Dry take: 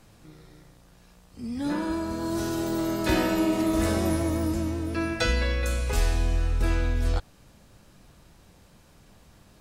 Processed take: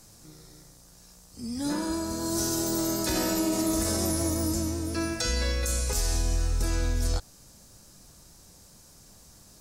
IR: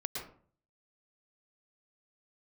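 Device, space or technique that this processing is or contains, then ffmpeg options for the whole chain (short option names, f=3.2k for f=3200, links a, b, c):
over-bright horn tweeter: -af "highshelf=f=4.1k:t=q:w=1.5:g=11,alimiter=limit=-16dB:level=0:latency=1:release=51,volume=-1.5dB"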